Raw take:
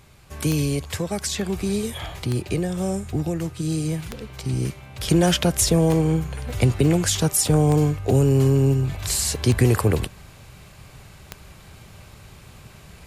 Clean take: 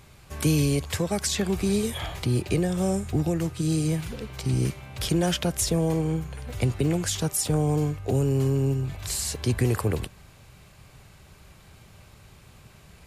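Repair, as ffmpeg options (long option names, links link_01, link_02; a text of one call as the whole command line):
ffmpeg -i in.wav -af "adeclick=threshold=4,asetnsamples=nb_out_samples=441:pad=0,asendcmd='5.08 volume volume -6dB',volume=0dB" out.wav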